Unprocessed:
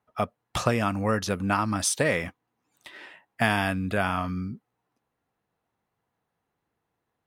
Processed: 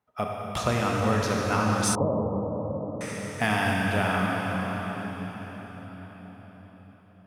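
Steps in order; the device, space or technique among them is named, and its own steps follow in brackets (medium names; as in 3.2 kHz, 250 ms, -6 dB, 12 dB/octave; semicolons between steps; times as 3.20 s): cathedral (reverberation RT60 5.5 s, pre-delay 28 ms, DRR -2.5 dB); 1.95–3.01 s: steep low-pass 1.1 kHz 72 dB/octave; trim -3 dB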